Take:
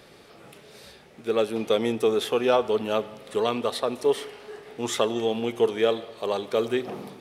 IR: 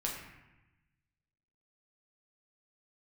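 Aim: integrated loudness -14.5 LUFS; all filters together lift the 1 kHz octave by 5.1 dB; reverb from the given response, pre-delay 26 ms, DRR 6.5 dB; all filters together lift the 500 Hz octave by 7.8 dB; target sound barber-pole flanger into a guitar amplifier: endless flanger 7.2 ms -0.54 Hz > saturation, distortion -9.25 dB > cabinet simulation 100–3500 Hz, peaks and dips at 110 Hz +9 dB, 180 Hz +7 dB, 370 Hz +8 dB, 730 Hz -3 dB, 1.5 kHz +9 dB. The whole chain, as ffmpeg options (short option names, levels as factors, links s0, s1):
-filter_complex "[0:a]equalizer=f=500:t=o:g=5,equalizer=f=1000:t=o:g=4.5,asplit=2[s0][s1];[1:a]atrim=start_sample=2205,adelay=26[s2];[s1][s2]afir=irnorm=-1:irlink=0,volume=0.335[s3];[s0][s3]amix=inputs=2:normalize=0,asplit=2[s4][s5];[s5]adelay=7.2,afreqshift=-0.54[s6];[s4][s6]amix=inputs=2:normalize=1,asoftclip=threshold=0.112,highpass=100,equalizer=f=110:t=q:w=4:g=9,equalizer=f=180:t=q:w=4:g=7,equalizer=f=370:t=q:w=4:g=8,equalizer=f=730:t=q:w=4:g=-3,equalizer=f=1500:t=q:w=4:g=9,lowpass=f=3500:w=0.5412,lowpass=f=3500:w=1.3066,volume=3.16"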